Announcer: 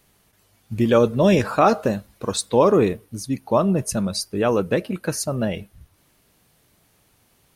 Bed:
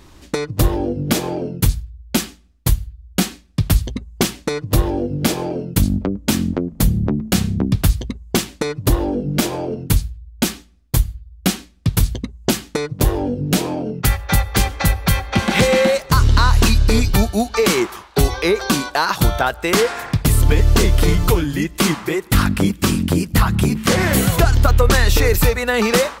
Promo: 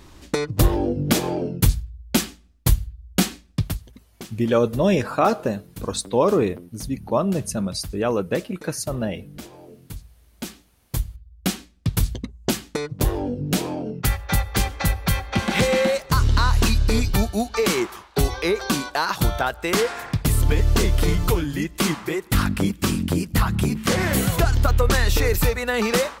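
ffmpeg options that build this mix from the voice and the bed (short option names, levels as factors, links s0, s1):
-filter_complex "[0:a]adelay=3600,volume=0.75[s0];[1:a]volume=5.01,afade=t=out:st=3.51:d=0.27:silence=0.112202,afade=t=in:st=10.12:d=1.5:silence=0.16788[s1];[s0][s1]amix=inputs=2:normalize=0"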